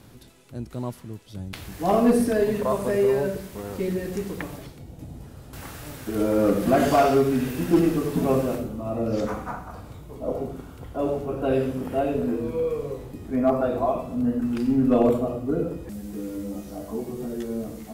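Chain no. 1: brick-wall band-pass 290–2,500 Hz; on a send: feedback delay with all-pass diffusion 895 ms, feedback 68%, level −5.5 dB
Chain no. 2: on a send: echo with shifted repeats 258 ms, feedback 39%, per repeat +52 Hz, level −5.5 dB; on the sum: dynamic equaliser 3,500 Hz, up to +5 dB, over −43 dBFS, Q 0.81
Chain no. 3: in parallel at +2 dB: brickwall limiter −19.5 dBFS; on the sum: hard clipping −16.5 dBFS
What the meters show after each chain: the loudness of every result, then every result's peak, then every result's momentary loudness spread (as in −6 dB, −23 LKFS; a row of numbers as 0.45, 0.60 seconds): −25.5, −23.5, −22.5 LKFS; −7.5, −5.5, −16.5 dBFS; 11, 17, 12 LU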